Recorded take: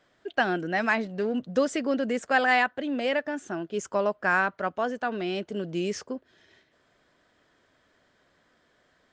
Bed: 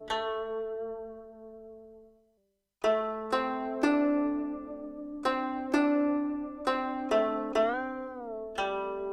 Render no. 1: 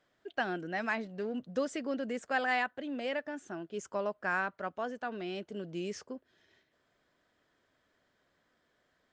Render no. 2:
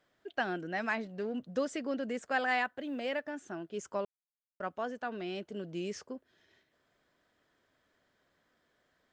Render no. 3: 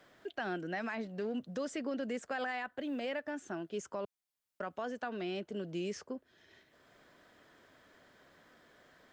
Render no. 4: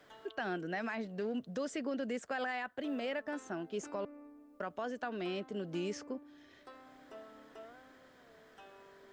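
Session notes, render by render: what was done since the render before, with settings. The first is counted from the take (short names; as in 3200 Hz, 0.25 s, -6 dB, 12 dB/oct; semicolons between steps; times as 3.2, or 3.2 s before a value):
gain -8.5 dB
2.64–3.31 short-mantissa float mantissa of 6-bit; 4.05–4.6 mute
limiter -28.5 dBFS, peak gain reduction 9.5 dB; three-band squash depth 40%
add bed -25 dB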